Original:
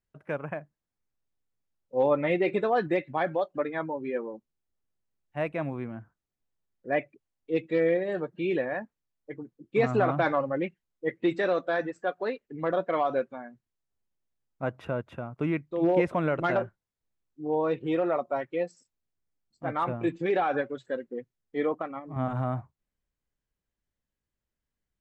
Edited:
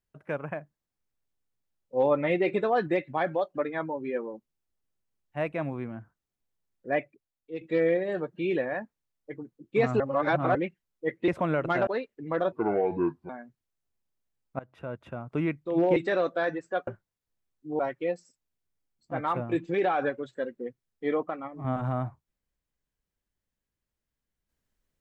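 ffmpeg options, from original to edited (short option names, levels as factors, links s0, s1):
-filter_complex "[0:a]asplit=12[s0][s1][s2][s3][s4][s5][s6][s7][s8][s9][s10][s11];[s0]atrim=end=7.61,asetpts=PTS-STARTPTS,afade=t=out:st=6.94:d=0.67:c=qua:silence=0.334965[s12];[s1]atrim=start=7.61:end=10.002,asetpts=PTS-STARTPTS,afade=t=in:d=0.004:c=hsin:silence=0.334965[s13];[s2]atrim=start=9.998:end=10.552,asetpts=PTS-STARTPTS,areverse[s14];[s3]atrim=start=10.548:end=11.282[s15];[s4]atrim=start=16.018:end=16.612[s16];[s5]atrim=start=12.188:end=12.844[s17];[s6]atrim=start=12.84:end=13.35,asetpts=PTS-STARTPTS,asetrate=29106,aresample=44100,atrim=end_sample=34077,asetpts=PTS-STARTPTS[s18];[s7]atrim=start=13.346:end=14.65,asetpts=PTS-STARTPTS,afade=t=out:st=1.3:d=0.004:c=hsin:silence=0.0891251[s19];[s8]atrim=start=14.65:end=16.022,asetpts=PTS-STARTPTS,afade=t=in:d=0.63:silence=0.0891251[s20];[s9]atrim=start=11.278:end=12.192[s21];[s10]atrim=start=16.608:end=17.532[s22];[s11]atrim=start=18.308[s23];[s12][s13]concat=n=2:v=0:a=1[s24];[s24][s14]acrossfade=d=0.004:c1=hsin:c2=hsin[s25];[s25][s15]acrossfade=d=0.004:c1=hsin:c2=hsin[s26];[s26][s16]acrossfade=d=0.004:c1=hsin:c2=hsin[s27];[s27][s17]acrossfade=d=0.004:c1=hsin:c2=hsin[s28];[s28][s18]acrossfade=d=0.004:c1=hsin:c2=hsin[s29];[s19][s20]concat=n=2:v=0:a=1[s30];[s29][s30]acrossfade=d=0.004:c1=hsin:c2=hsin[s31];[s31][s21]acrossfade=d=0.004:c1=hsin:c2=hsin[s32];[s32][s22]acrossfade=d=0.004:c1=hsin:c2=hsin[s33];[s33][s23]acrossfade=d=0.004:c1=hsin:c2=hsin"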